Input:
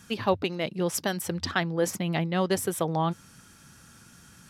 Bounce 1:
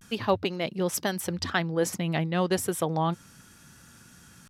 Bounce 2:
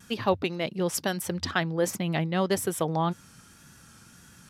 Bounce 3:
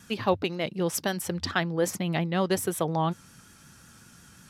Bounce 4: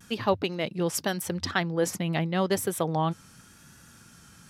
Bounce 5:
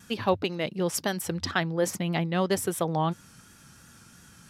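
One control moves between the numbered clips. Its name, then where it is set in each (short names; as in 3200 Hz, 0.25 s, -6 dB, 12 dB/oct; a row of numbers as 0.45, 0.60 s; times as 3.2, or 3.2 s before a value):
vibrato, rate: 0.33, 1.7, 5.5, 0.87, 2.9 Hz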